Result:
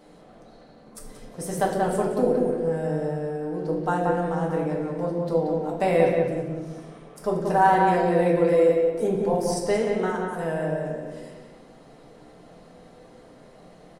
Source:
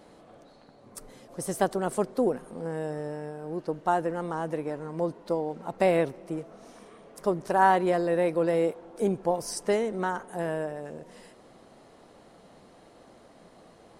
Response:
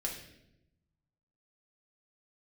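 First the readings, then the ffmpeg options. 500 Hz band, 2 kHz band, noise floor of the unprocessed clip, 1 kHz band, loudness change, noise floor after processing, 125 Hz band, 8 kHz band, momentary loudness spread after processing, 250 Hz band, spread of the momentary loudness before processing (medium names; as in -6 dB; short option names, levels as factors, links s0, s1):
+5.0 dB, +3.0 dB, -55 dBFS, +4.0 dB, +4.5 dB, -50 dBFS, +7.5 dB, +1.0 dB, 14 LU, +5.0 dB, 13 LU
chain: -filter_complex "[0:a]asplit=2[s0][s1];[s1]adelay=182,lowpass=f=2700:p=1,volume=0.668,asplit=2[s2][s3];[s3]adelay=182,lowpass=f=2700:p=1,volume=0.33,asplit=2[s4][s5];[s5]adelay=182,lowpass=f=2700:p=1,volume=0.33,asplit=2[s6][s7];[s7]adelay=182,lowpass=f=2700:p=1,volume=0.33[s8];[s0][s2][s4][s6][s8]amix=inputs=5:normalize=0[s9];[1:a]atrim=start_sample=2205[s10];[s9][s10]afir=irnorm=-1:irlink=0"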